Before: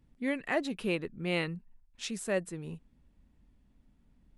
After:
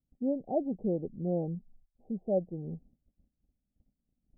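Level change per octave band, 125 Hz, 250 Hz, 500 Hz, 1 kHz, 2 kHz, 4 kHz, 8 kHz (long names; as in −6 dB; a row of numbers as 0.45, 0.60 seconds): +2.5 dB, +2.0 dB, +2.0 dB, −1.5 dB, below −40 dB, below −40 dB, below −35 dB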